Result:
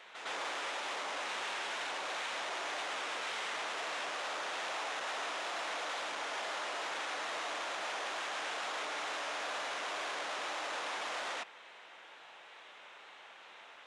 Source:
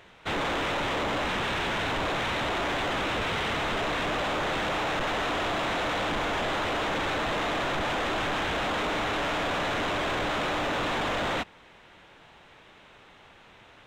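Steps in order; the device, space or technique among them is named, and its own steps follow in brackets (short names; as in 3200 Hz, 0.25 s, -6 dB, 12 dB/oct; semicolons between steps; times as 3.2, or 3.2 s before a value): compact cassette (soft clip -37.5 dBFS, distortion -14 dB; LPF 9900 Hz 12 dB/oct; wow and flutter; white noise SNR 39 dB); HPF 600 Hz 12 dB/oct; LPF 9400 Hz 24 dB/oct; reverse echo 0.108 s -7 dB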